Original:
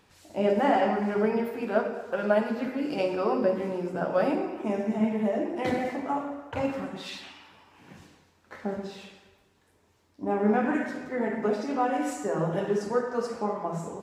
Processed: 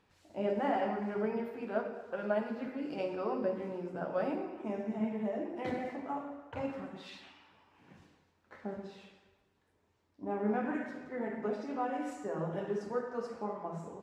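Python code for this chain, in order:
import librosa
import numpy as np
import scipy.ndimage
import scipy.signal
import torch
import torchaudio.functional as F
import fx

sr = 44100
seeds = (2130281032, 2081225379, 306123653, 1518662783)

y = fx.high_shelf(x, sr, hz=5800.0, db=-10.5)
y = y * 10.0 ** (-8.5 / 20.0)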